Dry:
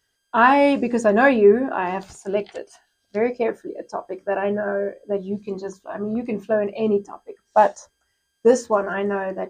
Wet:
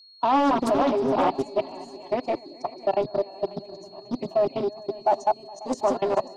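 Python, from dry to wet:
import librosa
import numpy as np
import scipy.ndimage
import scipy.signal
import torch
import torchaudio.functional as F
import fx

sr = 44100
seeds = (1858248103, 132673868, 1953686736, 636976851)

p1 = fx.reverse_delay_fb(x, sr, ms=310, feedback_pct=50, wet_db=-8.0)
p2 = fx.high_shelf(p1, sr, hz=7900.0, db=-9.5)
p3 = fx.level_steps(p2, sr, step_db=23)
p4 = p3 + 10.0 ** (-55.0 / 20.0) * np.sin(2.0 * np.pi * 4300.0 * np.arange(len(p3)) / sr)
p5 = fx.stretch_vocoder(p4, sr, factor=0.67)
p6 = 10.0 ** (-16.0 / 20.0) * np.tanh(p5 / 10.0 ** (-16.0 / 20.0))
p7 = fx.fixed_phaser(p6, sr, hz=310.0, stages=8)
p8 = p7 + fx.echo_feedback(p7, sr, ms=542, feedback_pct=39, wet_db=-19.5, dry=0)
p9 = fx.doppler_dist(p8, sr, depth_ms=0.4)
y = p9 * 10.0 ** (7.5 / 20.0)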